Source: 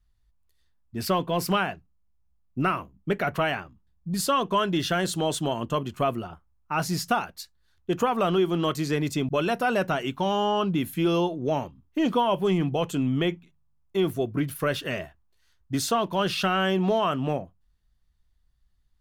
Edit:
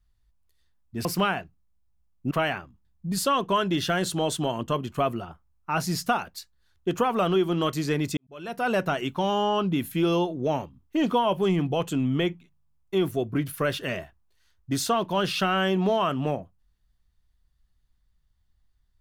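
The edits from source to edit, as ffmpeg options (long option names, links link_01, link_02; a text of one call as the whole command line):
ffmpeg -i in.wav -filter_complex "[0:a]asplit=4[link_01][link_02][link_03][link_04];[link_01]atrim=end=1.052[link_05];[link_02]atrim=start=1.368:end=2.632[link_06];[link_03]atrim=start=3.328:end=9.19,asetpts=PTS-STARTPTS,afade=type=out:start_time=5.858:duration=0.004:curve=hsin[link_07];[link_04]atrim=start=9.19,asetpts=PTS-STARTPTS,afade=type=in:duration=0.53:curve=qua[link_08];[link_05][link_06]acrossfade=duration=0.004:curve1=hsin:curve2=hsin[link_09];[link_07][link_08]concat=n=2:v=0:a=1[link_10];[link_09][link_10]acrossfade=duration=0.004:curve1=hsin:curve2=hsin" out.wav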